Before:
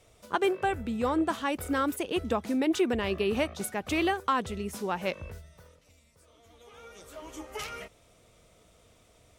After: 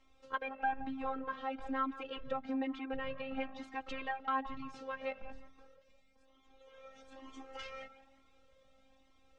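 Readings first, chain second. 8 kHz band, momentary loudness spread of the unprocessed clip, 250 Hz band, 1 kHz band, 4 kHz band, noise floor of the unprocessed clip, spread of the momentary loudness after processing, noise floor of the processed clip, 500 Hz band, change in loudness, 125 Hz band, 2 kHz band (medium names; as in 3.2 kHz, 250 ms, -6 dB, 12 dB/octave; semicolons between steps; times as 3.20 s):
under -25 dB, 18 LU, -11.5 dB, -6.5 dB, -12.5 dB, -62 dBFS, 18 LU, -68 dBFS, -13.0 dB, -10.0 dB, -18.5 dB, -8.0 dB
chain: low-pass that closes with the level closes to 2.3 kHz, closed at -25 dBFS; dynamic bell 320 Hz, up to -6 dB, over -40 dBFS, Q 1; robot voice 266 Hz; distance through air 150 m; tape echo 173 ms, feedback 54%, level -13 dB, low-pass 1.9 kHz; Shepard-style flanger rising 1.1 Hz; trim +1 dB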